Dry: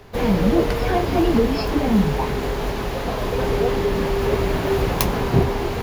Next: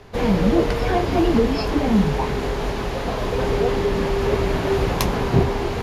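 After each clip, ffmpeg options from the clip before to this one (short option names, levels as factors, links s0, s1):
-af "lowpass=10000"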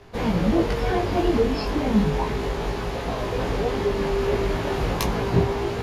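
-af "flanger=delay=17.5:depth=2.4:speed=0.35"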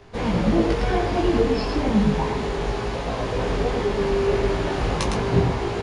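-af "aecho=1:1:109:0.562,aresample=22050,aresample=44100"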